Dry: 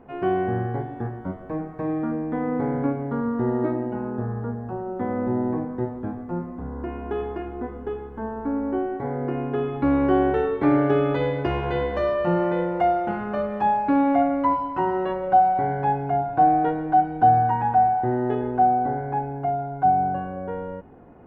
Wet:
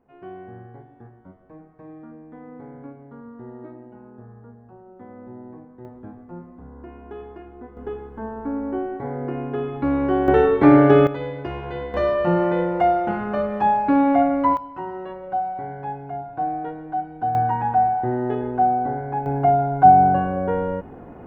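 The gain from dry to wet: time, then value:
-15.5 dB
from 5.85 s -9 dB
from 7.77 s -1 dB
from 10.28 s +7 dB
from 11.07 s -5.5 dB
from 11.94 s +2.5 dB
from 14.57 s -8 dB
from 17.35 s 0 dB
from 19.26 s +8 dB

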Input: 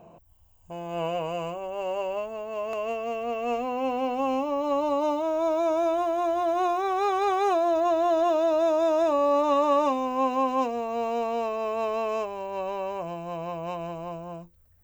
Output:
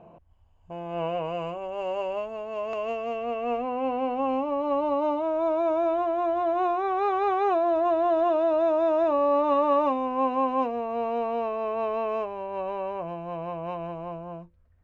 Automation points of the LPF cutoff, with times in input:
1.18 s 2800 Hz
1.75 s 4700 Hz
2.99 s 4700 Hz
3.59 s 2400 Hz

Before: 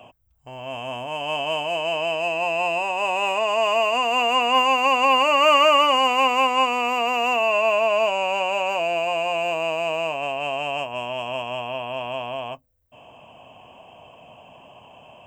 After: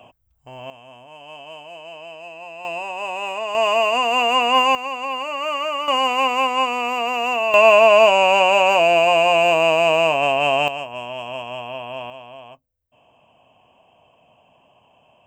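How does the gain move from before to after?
-0.5 dB
from 0.7 s -13 dB
from 2.65 s -4 dB
from 3.55 s +2.5 dB
from 4.75 s -8.5 dB
from 5.88 s 0 dB
from 7.54 s +8.5 dB
from 10.68 s -1.5 dB
from 12.1 s -9.5 dB

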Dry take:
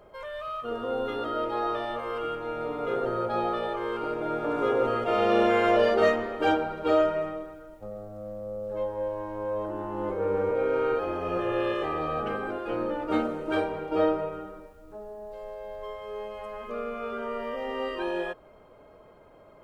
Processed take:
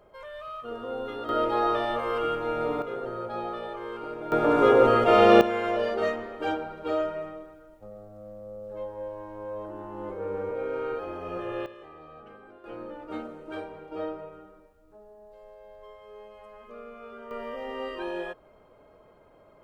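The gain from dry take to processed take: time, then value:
-4 dB
from 1.29 s +4 dB
from 2.82 s -5.5 dB
from 4.32 s +7 dB
from 5.41 s -5.5 dB
from 11.66 s -18 dB
from 12.64 s -10 dB
from 17.31 s -3 dB

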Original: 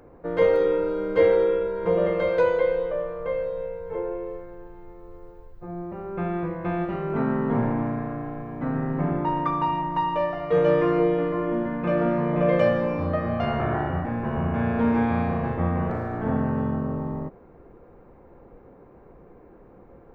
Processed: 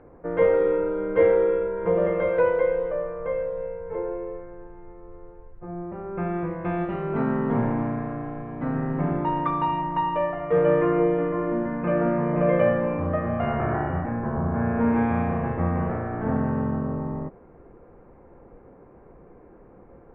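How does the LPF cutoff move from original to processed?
LPF 24 dB/oct
6.07 s 2400 Hz
6.93 s 3600 Hz
9.69 s 3600 Hz
10.45 s 2400 Hz
14.01 s 2400 Hz
14.43 s 1500 Hz
15.01 s 2600 Hz

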